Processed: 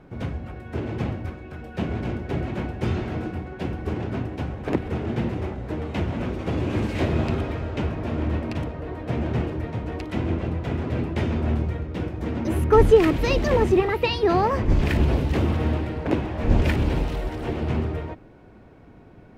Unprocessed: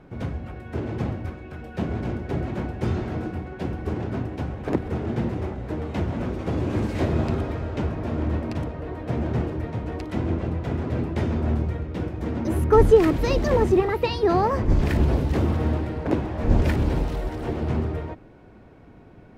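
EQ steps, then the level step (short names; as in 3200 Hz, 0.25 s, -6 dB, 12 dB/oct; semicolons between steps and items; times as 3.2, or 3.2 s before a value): dynamic EQ 2700 Hz, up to +6 dB, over -49 dBFS, Q 1.4; 0.0 dB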